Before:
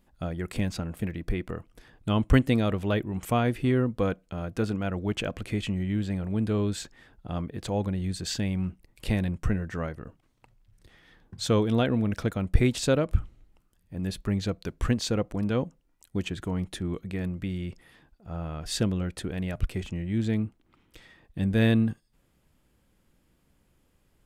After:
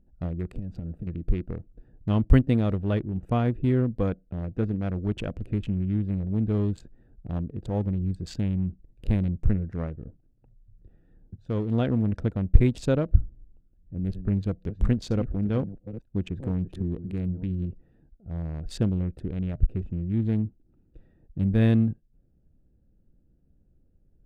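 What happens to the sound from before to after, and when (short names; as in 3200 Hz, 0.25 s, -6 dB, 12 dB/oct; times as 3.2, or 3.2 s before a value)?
0.55–1.07 compressor 16:1, threshold -31 dBFS
11.36–11.87 fade in, from -12.5 dB
13.18–17.66 reverse delay 0.473 s, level -11 dB
whole clip: Wiener smoothing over 41 samples; tilt -2 dB/oct; gain -3 dB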